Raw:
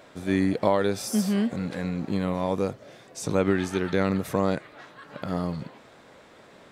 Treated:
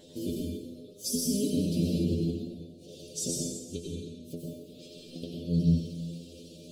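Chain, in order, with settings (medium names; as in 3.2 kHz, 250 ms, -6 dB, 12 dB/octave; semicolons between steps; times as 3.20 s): pitch shift switched off and on +4 st, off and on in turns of 130 ms; inverted gate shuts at -16 dBFS, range -28 dB; inverse Chebyshev band-stop 780–2100 Hz, stop band 40 dB; vibrato 1.1 Hz 9.7 cents; in parallel at -1 dB: peak limiter -27.5 dBFS, peak gain reduction 11 dB; on the sum: inharmonic resonator 83 Hz, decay 0.33 s, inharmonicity 0.002; plate-style reverb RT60 1.2 s, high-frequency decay 0.95×, pre-delay 80 ms, DRR -2.5 dB; trim +7 dB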